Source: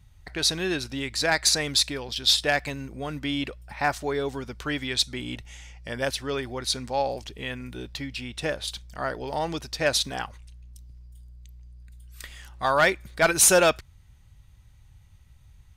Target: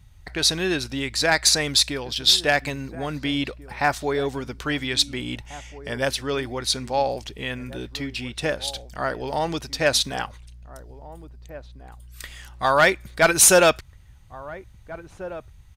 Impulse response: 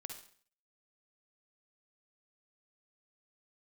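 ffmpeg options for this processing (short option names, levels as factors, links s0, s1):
-filter_complex "[0:a]asplit=2[s0][s1];[s1]adelay=1691,volume=0.158,highshelf=f=4000:g=-38[s2];[s0][s2]amix=inputs=2:normalize=0,volume=1.5"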